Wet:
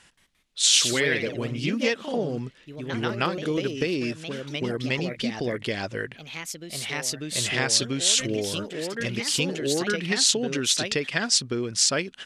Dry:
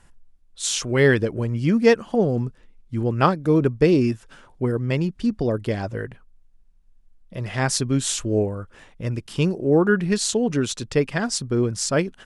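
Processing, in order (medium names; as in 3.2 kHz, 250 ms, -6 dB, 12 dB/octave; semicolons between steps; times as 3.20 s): compression 6:1, threshold -22 dBFS, peak gain reduction 11.5 dB; ever faster or slower copies 174 ms, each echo +2 st, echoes 2, each echo -6 dB; frequency weighting D; trim -1 dB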